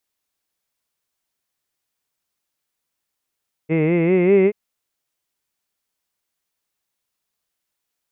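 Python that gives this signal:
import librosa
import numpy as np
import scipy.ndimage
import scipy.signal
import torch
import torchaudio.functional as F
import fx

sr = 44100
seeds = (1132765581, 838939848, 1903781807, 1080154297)

y = fx.formant_vowel(sr, seeds[0], length_s=0.83, hz=153.0, glide_st=5.0, vibrato_hz=5.1, vibrato_st=0.9, f1_hz=410.0, f2_hz=2100.0, f3_hz=2600.0)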